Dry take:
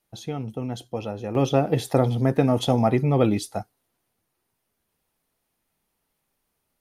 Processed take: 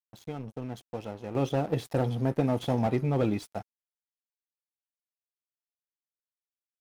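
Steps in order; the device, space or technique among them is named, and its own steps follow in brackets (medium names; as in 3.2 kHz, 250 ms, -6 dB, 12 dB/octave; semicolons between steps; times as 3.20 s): early transistor amplifier (crossover distortion -41 dBFS; slew-rate limiter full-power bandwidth 87 Hz); trim -5.5 dB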